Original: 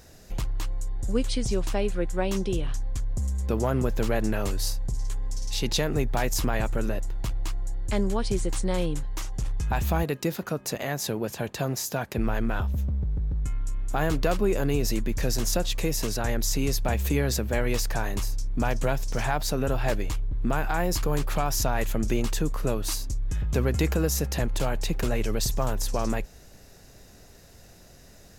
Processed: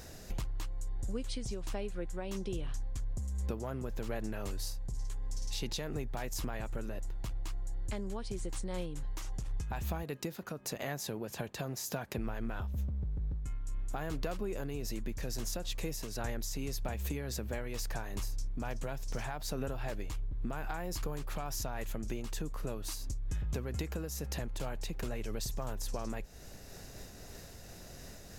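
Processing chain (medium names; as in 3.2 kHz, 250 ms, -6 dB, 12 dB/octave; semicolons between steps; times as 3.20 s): compression, threshold -37 dBFS, peak gain reduction 17 dB; random flutter of the level, depth 50%; trim +4.5 dB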